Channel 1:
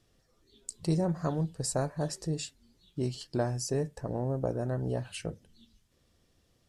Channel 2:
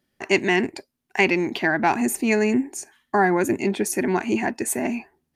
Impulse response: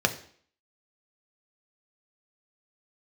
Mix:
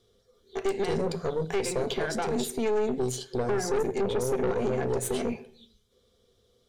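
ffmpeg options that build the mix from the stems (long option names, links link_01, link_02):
-filter_complex "[0:a]volume=1.5dB,asplit=2[link_01][link_02];[link_02]volume=-17dB[link_03];[1:a]acompressor=threshold=-25dB:ratio=4,adelay=350,volume=-4dB,asplit=2[link_04][link_05];[link_05]volume=-11dB[link_06];[2:a]atrim=start_sample=2205[link_07];[link_03][link_06]amix=inputs=2:normalize=0[link_08];[link_08][link_07]afir=irnorm=-1:irlink=0[link_09];[link_01][link_04][link_09]amix=inputs=3:normalize=0,superequalizer=6b=0.562:7b=2.82:9b=0.708:11b=0.708:13b=2.24,aeval=exprs='(tanh(8.91*val(0)+0.6)-tanh(0.6))/8.91':channel_layout=same,alimiter=limit=-19dB:level=0:latency=1:release=87"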